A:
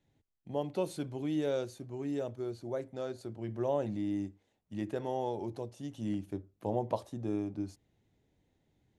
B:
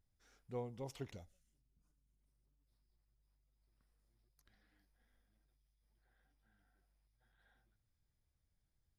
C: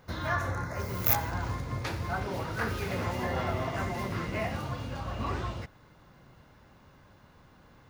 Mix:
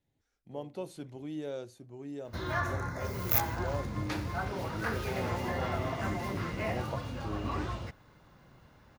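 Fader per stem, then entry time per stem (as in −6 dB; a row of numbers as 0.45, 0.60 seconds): −6.0, −12.0, −2.0 decibels; 0.00, 0.00, 2.25 seconds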